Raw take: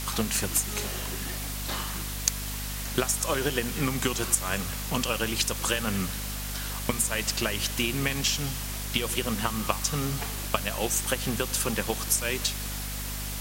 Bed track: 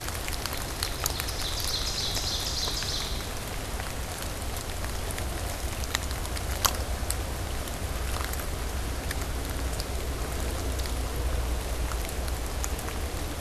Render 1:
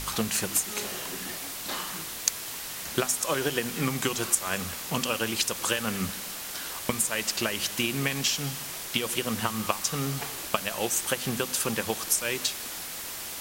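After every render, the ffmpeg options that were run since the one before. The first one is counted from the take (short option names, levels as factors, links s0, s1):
-af "bandreject=f=50:t=h:w=4,bandreject=f=100:t=h:w=4,bandreject=f=150:t=h:w=4,bandreject=f=200:t=h:w=4,bandreject=f=250:t=h:w=4"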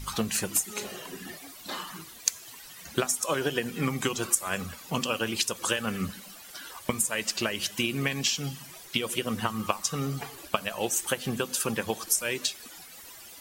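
-af "afftdn=nr=14:nf=-37"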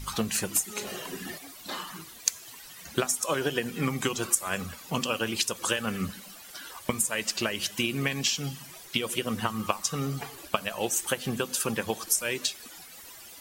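-filter_complex "[0:a]asplit=3[s0][s1][s2];[s0]atrim=end=0.872[s3];[s1]atrim=start=0.868:end=1.382,asetpts=PTS-STARTPTS,volume=1.41[s4];[s2]atrim=start=1.378[s5];[s3][s4]acrossfade=d=0.004:c1=hsin:c2=hsin[s6];[s6][s5]acrossfade=d=0.004:c1=hsin:c2=hsin"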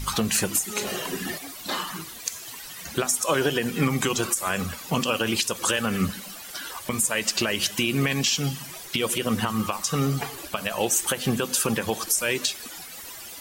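-af "alimiter=limit=0.119:level=0:latency=1:release=45,acontrast=83"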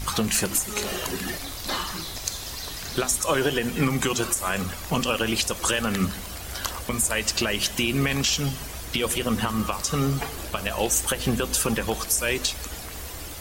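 -filter_complex "[1:a]volume=0.473[s0];[0:a][s0]amix=inputs=2:normalize=0"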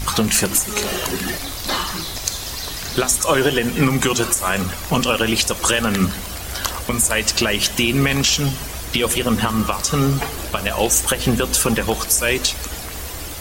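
-af "volume=2.11"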